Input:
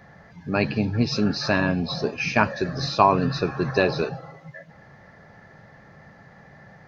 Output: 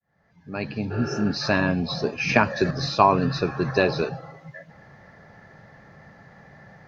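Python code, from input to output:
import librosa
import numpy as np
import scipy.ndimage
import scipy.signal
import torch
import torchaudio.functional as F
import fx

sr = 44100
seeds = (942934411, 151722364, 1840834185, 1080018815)

y = fx.fade_in_head(x, sr, length_s=1.44)
y = fx.spec_repair(y, sr, seeds[0], start_s=0.94, length_s=0.29, low_hz=310.0, high_hz=5200.0, source='after')
y = fx.band_squash(y, sr, depth_pct=100, at=(2.29, 2.71))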